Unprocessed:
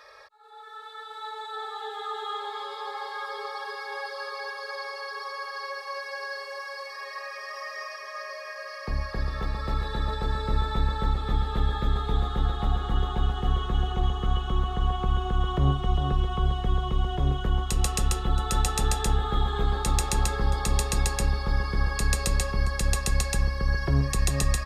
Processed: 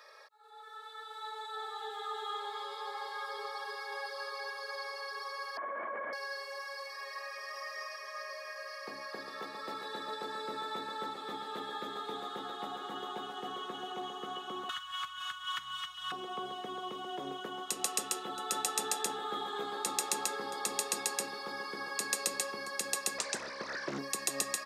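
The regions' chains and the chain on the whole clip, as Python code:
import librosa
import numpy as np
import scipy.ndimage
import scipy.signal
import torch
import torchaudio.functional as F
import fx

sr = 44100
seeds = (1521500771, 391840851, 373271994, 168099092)

y = fx.chain(x, sr, fx.lowpass(hz=1800.0, slope=24),
    fx.lpc_vocoder(seeds[0], excitation='whisper', order=10),
    fx.env_flatten(amount_pct=100), at=(5.57, 6.13))
y = fx.chain(y, sr, fx.cheby2_bandstop(low_hz=190.0, high_hz=640.0, order=4, stop_db=50),
    fx.peak_eq(hz=340.0, db=11.5, octaves=0.48),
    fx.env_flatten(amount_pct=100), at=(14.69, 16.12))
y = fx.chain(y, sr, fx.lowpass(hz=8600.0, slope=24),
    fx.low_shelf(hz=110.0, db=9.5),
    fx.doppler_dist(depth_ms=0.83), at=(23.18, 23.99))
y = scipy.signal.sosfilt(scipy.signal.butter(4, 270.0, 'highpass', fs=sr, output='sos'), y)
y = fx.high_shelf(y, sr, hz=6200.0, db=6.5)
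y = y * 10.0 ** (-6.0 / 20.0)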